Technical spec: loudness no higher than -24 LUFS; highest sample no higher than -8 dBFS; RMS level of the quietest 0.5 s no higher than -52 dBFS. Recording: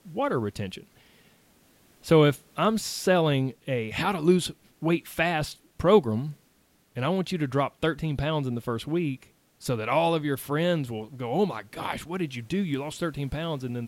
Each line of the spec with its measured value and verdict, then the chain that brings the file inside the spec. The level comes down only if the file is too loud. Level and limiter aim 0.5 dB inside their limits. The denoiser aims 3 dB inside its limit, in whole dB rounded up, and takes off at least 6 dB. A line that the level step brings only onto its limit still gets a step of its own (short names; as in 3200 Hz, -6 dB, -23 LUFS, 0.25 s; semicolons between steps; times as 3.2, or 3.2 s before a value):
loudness -27.0 LUFS: OK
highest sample -6.5 dBFS: fail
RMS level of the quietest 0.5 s -64 dBFS: OK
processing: limiter -8.5 dBFS